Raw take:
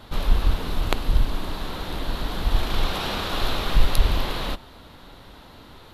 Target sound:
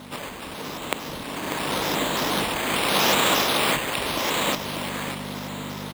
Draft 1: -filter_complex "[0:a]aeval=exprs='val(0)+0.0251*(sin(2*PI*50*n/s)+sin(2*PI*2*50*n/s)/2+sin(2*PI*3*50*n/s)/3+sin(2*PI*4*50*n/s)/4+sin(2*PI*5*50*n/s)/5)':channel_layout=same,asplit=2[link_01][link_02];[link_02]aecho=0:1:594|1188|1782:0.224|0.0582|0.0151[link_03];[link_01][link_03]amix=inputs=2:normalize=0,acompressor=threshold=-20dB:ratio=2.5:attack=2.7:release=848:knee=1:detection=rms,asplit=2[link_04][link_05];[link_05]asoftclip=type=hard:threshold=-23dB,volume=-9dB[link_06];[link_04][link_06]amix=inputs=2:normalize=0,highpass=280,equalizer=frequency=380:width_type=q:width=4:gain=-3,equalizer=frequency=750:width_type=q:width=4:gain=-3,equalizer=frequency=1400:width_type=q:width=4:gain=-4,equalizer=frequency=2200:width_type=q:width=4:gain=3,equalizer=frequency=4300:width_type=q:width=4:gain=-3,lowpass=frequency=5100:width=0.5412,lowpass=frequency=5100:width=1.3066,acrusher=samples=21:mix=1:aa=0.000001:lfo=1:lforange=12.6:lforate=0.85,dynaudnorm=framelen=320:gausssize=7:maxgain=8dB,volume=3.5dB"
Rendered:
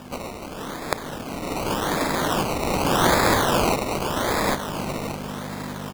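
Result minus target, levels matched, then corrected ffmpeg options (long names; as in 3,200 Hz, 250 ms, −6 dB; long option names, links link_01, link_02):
sample-and-hold swept by an LFO: distortion +11 dB; hard clipping: distortion −7 dB
-filter_complex "[0:a]aeval=exprs='val(0)+0.0251*(sin(2*PI*50*n/s)+sin(2*PI*2*50*n/s)/2+sin(2*PI*3*50*n/s)/3+sin(2*PI*4*50*n/s)/4+sin(2*PI*5*50*n/s)/5)':channel_layout=same,asplit=2[link_01][link_02];[link_02]aecho=0:1:594|1188|1782:0.224|0.0582|0.0151[link_03];[link_01][link_03]amix=inputs=2:normalize=0,acompressor=threshold=-20dB:ratio=2.5:attack=2.7:release=848:knee=1:detection=rms,asplit=2[link_04][link_05];[link_05]asoftclip=type=hard:threshold=-33.5dB,volume=-9dB[link_06];[link_04][link_06]amix=inputs=2:normalize=0,highpass=280,equalizer=frequency=380:width_type=q:width=4:gain=-3,equalizer=frequency=750:width_type=q:width=4:gain=-3,equalizer=frequency=1400:width_type=q:width=4:gain=-4,equalizer=frequency=2200:width_type=q:width=4:gain=3,equalizer=frequency=4300:width_type=q:width=4:gain=-3,lowpass=frequency=5100:width=0.5412,lowpass=frequency=5100:width=1.3066,acrusher=samples=6:mix=1:aa=0.000001:lfo=1:lforange=3.6:lforate=0.85,dynaudnorm=framelen=320:gausssize=7:maxgain=8dB,volume=3.5dB"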